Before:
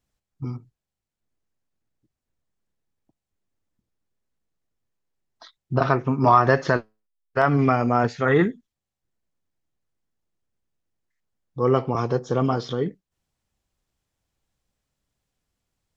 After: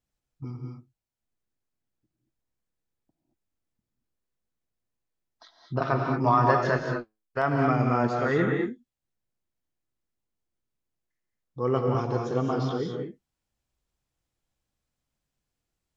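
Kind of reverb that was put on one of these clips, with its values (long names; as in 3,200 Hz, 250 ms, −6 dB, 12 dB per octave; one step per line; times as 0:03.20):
reverb whose tail is shaped and stops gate 250 ms rising, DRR 1.5 dB
level −6.5 dB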